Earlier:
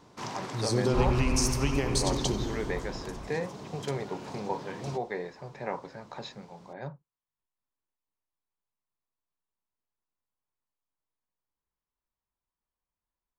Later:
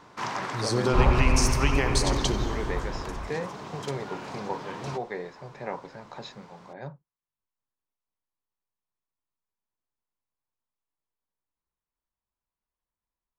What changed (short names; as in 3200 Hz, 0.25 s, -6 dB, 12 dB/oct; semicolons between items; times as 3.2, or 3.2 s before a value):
first sound: add bell 1500 Hz +10 dB 2.1 oct; second sound +7.5 dB